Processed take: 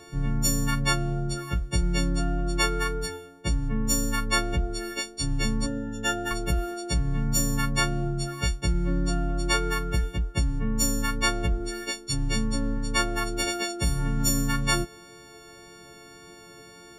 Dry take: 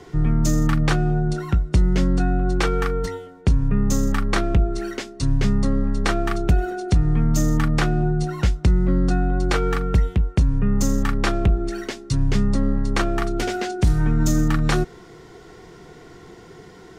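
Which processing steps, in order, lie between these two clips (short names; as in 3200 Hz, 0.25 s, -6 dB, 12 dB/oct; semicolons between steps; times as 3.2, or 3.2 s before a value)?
frequency quantiser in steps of 4 st; vibrato 1.8 Hz 5.9 cents; 5.66–6.31 notch comb 1100 Hz; gain -6.5 dB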